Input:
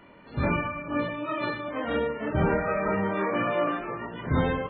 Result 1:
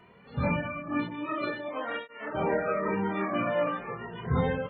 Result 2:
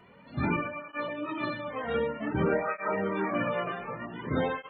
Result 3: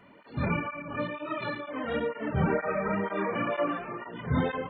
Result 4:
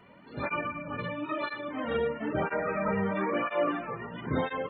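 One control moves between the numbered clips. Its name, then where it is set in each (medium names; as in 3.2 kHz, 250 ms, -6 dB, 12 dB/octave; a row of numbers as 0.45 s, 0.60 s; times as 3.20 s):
cancelling through-zero flanger, nulls at: 0.24 Hz, 0.54 Hz, 2.1 Hz, 1 Hz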